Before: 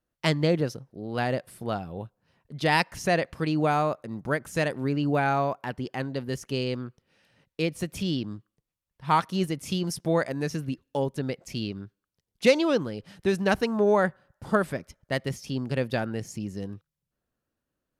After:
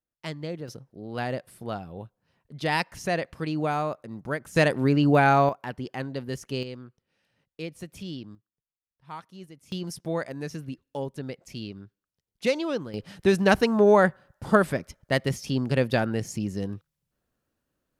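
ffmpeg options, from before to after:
ffmpeg -i in.wav -af "asetnsamples=nb_out_samples=441:pad=0,asendcmd='0.68 volume volume -3dB;4.56 volume volume 5.5dB;5.49 volume volume -1.5dB;6.63 volume volume -8.5dB;8.35 volume volume -17.5dB;9.72 volume volume -5dB;12.94 volume volume 4dB',volume=-11dB" out.wav

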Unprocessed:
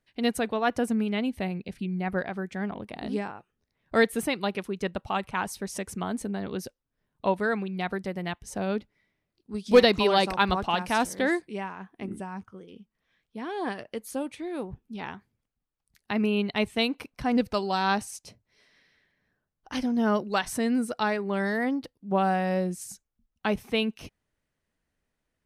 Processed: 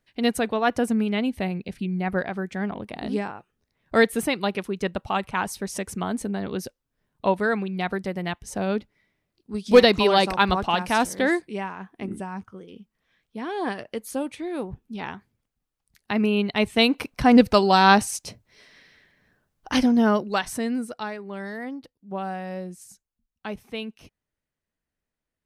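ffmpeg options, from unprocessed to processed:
ffmpeg -i in.wav -af "volume=10dB,afade=type=in:start_time=16.57:duration=0.54:silence=0.473151,afade=type=out:start_time=19.75:duration=0.38:silence=0.473151,afade=type=out:start_time=20.13:duration=0.99:silence=0.316228" out.wav

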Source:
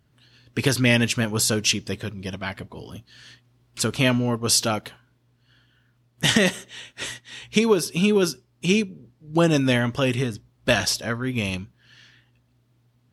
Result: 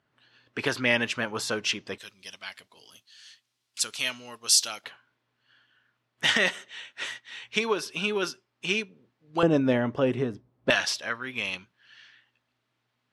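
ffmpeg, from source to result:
ffmpeg -i in.wav -af "asetnsamples=nb_out_samples=441:pad=0,asendcmd='1.98 bandpass f 6200;4.84 bandpass f 1700;9.43 bandpass f 490;10.7 bandpass f 2000',bandpass=frequency=1200:width_type=q:width=0.65:csg=0" out.wav

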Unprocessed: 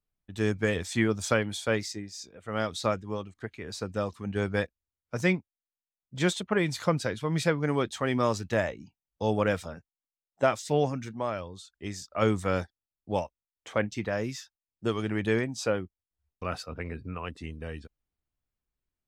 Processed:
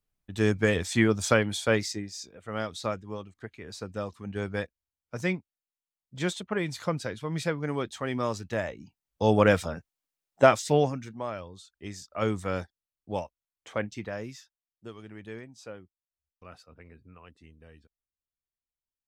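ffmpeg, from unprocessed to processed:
ffmpeg -i in.wav -af "volume=12.5dB,afade=type=out:start_time=1.99:duration=0.69:silence=0.473151,afade=type=in:start_time=8.63:duration=0.83:silence=0.334965,afade=type=out:start_time=10.53:duration=0.49:silence=0.354813,afade=type=out:start_time=13.76:duration=1.15:silence=0.251189" out.wav

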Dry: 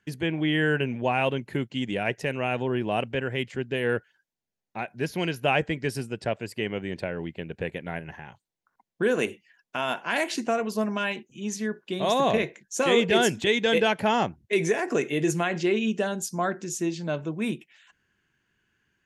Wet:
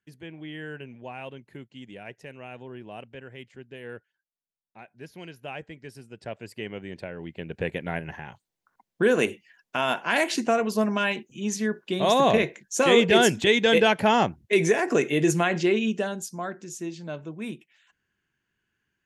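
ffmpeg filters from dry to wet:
ffmpeg -i in.wav -af "volume=3dB,afade=type=in:start_time=6.02:duration=0.46:silence=0.375837,afade=type=in:start_time=7.19:duration=0.52:silence=0.375837,afade=type=out:start_time=15.52:duration=0.88:silence=0.354813" out.wav

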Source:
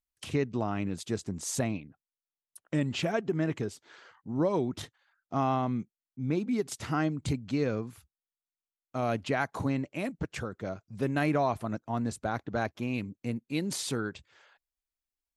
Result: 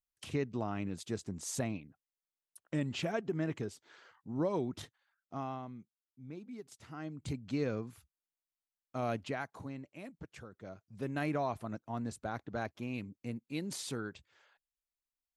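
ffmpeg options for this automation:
ffmpeg -i in.wav -af "volume=13.5dB,afade=type=out:start_time=4.71:duration=1.04:silence=0.266073,afade=type=in:start_time=6.96:duration=0.58:silence=0.251189,afade=type=out:start_time=9.09:duration=0.47:silence=0.354813,afade=type=in:start_time=10.49:duration=0.74:silence=0.446684" out.wav

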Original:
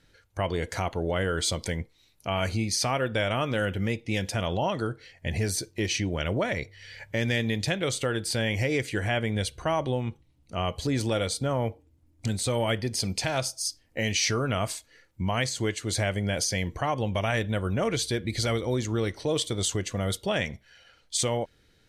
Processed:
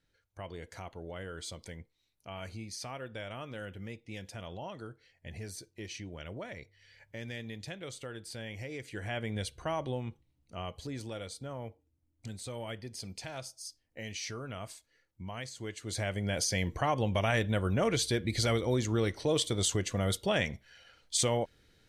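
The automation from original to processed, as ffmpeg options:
ffmpeg -i in.wav -af "volume=4.5dB,afade=type=in:start_time=8.78:duration=0.54:silence=0.421697,afade=type=out:start_time=9.98:duration=1.08:silence=0.473151,afade=type=in:start_time=15.59:duration=1.11:silence=0.251189" out.wav

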